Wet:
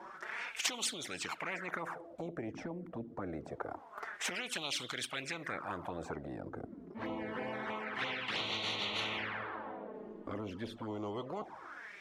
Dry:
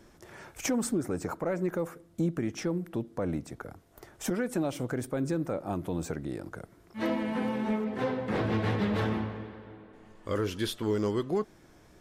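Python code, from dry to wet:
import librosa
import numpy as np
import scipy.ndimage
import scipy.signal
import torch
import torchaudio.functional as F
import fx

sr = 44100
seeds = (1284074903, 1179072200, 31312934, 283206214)

y = fx.env_flanger(x, sr, rest_ms=5.9, full_db=-25.5)
y = fx.wah_lfo(y, sr, hz=0.26, low_hz=240.0, high_hz=3500.0, q=5.7)
y = fx.spectral_comp(y, sr, ratio=4.0)
y = y * 10.0 ** (7.5 / 20.0)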